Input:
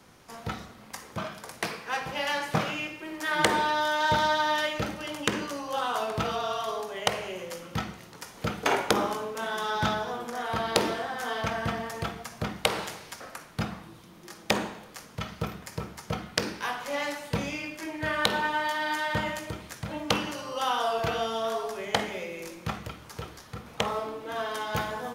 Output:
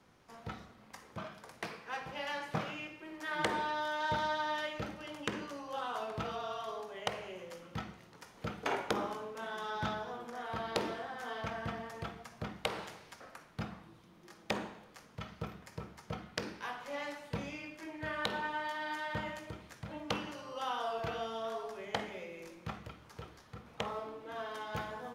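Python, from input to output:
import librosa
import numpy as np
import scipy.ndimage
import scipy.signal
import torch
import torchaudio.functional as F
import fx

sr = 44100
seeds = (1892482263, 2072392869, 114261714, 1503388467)

y = fx.high_shelf(x, sr, hz=5800.0, db=-9.5)
y = y * 10.0 ** (-9.0 / 20.0)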